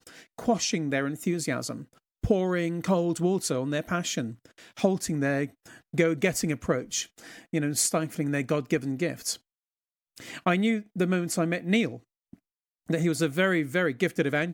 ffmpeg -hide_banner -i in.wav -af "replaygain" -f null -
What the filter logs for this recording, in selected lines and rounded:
track_gain = +8.0 dB
track_peak = 0.254